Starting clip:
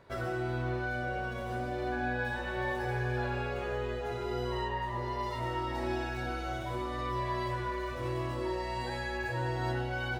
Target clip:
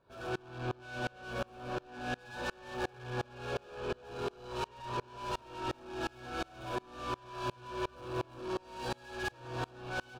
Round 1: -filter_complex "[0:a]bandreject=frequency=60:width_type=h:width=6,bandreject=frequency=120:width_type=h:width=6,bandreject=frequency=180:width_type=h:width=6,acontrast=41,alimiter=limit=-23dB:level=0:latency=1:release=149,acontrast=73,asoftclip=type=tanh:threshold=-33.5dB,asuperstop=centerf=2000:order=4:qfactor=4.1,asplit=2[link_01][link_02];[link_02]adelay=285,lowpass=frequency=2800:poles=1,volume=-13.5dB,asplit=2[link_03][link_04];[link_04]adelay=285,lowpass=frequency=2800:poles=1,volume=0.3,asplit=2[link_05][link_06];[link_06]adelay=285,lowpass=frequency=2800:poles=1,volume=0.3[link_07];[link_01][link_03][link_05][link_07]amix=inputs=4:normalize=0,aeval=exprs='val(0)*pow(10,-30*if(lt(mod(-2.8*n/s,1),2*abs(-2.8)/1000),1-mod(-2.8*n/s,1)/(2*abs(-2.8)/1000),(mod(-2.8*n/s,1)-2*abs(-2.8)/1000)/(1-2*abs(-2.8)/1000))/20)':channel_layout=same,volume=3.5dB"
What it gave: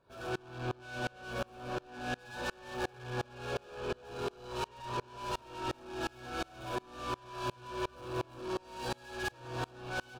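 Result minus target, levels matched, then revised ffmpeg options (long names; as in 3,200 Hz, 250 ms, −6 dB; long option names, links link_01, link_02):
8,000 Hz band +2.5 dB
-filter_complex "[0:a]bandreject=frequency=60:width_type=h:width=6,bandreject=frequency=120:width_type=h:width=6,bandreject=frequency=180:width_type=h:width=6,acontrast=41,alimiter=limit=-23dB:level=0:latency=1:release=149,acontrast=73,asoftclip=type=tanh:threshold=-33.5dB,asuperstop=centerf=2000:order=4:qfactor=4.1,highshelf=frequency=6300:gain=-5,asplit=2[link_01][link_02];[link_02]adelay=285,lowpass=frequency=2800:poles=1,volume=-13.5dB,asplit=2[link_03][link_04];[link_04]adelay=285,lowpass=frequency=2800:poles=1,volume=0.3,asplit=2[link_05][link_06];[link_06]adelay=285,lowpass=frequency=2800:poles=1,volume=0.3[link_07];[link_01][link_03][link_05][link_07]amix=inputs=4:normalize=0,aeval=exprs='val(0)*pow(10,-30*if(lt(mod(-2.8*n/s,1),2*abs(-2.8)/1000),1-mod(-2.8*n/s,1)/(2*abs(-2.8)/1000),(mod(-2.8*n/s,1)-2*abs(-2.8)/1000)/(1-2*abs(-2.8)/1000))/20)':channel_layout=same,volume=3.5dB"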